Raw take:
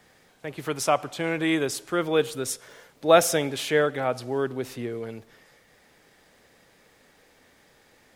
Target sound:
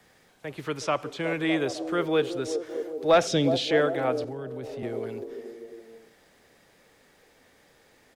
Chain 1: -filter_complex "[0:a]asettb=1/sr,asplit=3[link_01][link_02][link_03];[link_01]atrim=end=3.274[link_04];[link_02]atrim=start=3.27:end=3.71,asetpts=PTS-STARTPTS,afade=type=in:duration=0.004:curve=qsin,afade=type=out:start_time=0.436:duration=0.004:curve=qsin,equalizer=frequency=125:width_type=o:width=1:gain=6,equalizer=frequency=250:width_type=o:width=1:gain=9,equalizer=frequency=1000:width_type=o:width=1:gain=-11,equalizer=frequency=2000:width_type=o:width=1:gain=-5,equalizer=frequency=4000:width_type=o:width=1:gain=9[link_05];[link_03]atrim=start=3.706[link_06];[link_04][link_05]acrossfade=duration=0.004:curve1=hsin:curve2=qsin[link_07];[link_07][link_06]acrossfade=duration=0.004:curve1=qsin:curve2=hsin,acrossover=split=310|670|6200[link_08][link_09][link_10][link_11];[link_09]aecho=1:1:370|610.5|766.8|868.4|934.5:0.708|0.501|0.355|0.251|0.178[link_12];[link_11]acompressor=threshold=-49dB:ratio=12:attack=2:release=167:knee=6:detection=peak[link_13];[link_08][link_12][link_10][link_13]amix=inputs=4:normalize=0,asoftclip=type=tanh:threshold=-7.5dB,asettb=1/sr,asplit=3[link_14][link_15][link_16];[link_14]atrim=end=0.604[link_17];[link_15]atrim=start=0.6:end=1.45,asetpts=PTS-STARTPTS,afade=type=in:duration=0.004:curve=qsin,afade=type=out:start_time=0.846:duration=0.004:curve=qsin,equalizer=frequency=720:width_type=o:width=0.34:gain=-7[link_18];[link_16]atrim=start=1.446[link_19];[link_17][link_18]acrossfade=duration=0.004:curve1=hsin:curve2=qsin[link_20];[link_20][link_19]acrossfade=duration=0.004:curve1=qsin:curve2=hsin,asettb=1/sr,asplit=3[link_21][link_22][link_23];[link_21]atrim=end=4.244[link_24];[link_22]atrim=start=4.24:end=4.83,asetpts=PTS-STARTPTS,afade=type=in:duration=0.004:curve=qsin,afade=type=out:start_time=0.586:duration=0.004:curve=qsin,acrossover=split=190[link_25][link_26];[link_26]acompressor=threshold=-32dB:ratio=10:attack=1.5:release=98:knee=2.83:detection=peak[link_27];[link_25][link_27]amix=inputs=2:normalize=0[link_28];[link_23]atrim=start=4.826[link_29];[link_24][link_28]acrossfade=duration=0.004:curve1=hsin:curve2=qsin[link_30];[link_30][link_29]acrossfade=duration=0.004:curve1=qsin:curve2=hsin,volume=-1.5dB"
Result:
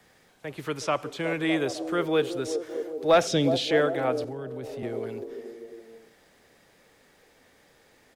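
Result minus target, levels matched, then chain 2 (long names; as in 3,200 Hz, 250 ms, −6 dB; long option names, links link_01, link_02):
downward compressor: peak gain reduction −6.5 dB
-filter_complex "[0:a]asettb=1/sr,asplit=3[link_01][link_02][link_03];[link_01]atrim=end=3.274[link_04];[link_02]atrim=start=3.27:end=3.71,asetpts=PTS-STARTPTS,afade=type=in:duration=0.004:curve=qsin,afade=type=out:start_time=0.436:duration=0.004:curve=qsin,equalizer=frequency=125:width_type=o:width=1:gain=6,equalizer=frequency=250:width_type=o:width=1:gain=9,equalizer=frequency=1000:width_type=o:width=1:gain=-11,equalizer=frequency=2000:width_type=o:width=1:gain=-5,equalizer=frequency=4000:width_type=o:width=1:gain=9[link_05];[link_03]atrim=start=3.706[link_06];[link_04][link_05]acrossfade=duration=0.004:curve1=hsin:curve2=qsin[link_07];[link_07][link_06]acrossfade=duration=0.004:curve1=qsin:curve2=hsin,acrossover=split=310|670|6200[link_08][link_09][link_10][link_11];[link_09]aecho=1:1:370|610.5|766.8|868.4|934.5:0.708|0.501|0.355|0.251|0.178[link_12];[link_11]acompressor=threshold=-56dB:ratio=12:attack=2:release=167:knee=6:detection=peak[link_13];[link_08][link_12][link_10][link_13]amix=inputs=4:normalize=0,asoftclip=type=tanh:threshold=-7.5dB,asettb=1/sr,asplit=3[link_14][link_15][link_16];[link_14]atrim=end=0.604[link_17];[link_15]atrim=start=0.6:end=1.45,asetpts=PTS-STARTPTS,afade=type=in:duration=0.004:curve=qsin,afade=type=out:start_time=0.846:duration=0.004:curve=qsin,equalizer=frequency=720:width_type=o:width=0.34:gain=-7[link_18];[link_16]atrim=start=1.446[link_19];[link_17][link_18]acrossfade=duration=0.004:curve1=hsin:curve2=qsin[link_20];[link_20][link_19]acrossfade=duration=0.004:curve1=qsin:curve2=hsin,asettb=1/sr,asplit=3[link_21][link_22][link_23];[link_21]atrim=end=4.244[link_24];[link_22]atrim=start=4.24:end=4.83,asetpts=PTS-STARTPTS,afade=type=in:duration=0.004:curve=qsin,afade=type=out:start_time=0.586:duration=0.004:curve=qsin,acrossover=split=190[link_25][link_26];[link_26]acompressor=threshold=-32dB:ratio=10:attack=1.5:release=98:knee=2.83:detection=peak[link_27];[link_25][link_27]amix=inputs=2:normalize=0[link_28];[link_23]atrim=start=4.826[link_29];[link_24][link_28]acrossfade=duration=0.004:curve1=hsin:curve2=qsin[link_30];[link_30][link_29]acrossfade=duration=0.004:curve1=qsin:curve2=hsin,volume=-1.5dB"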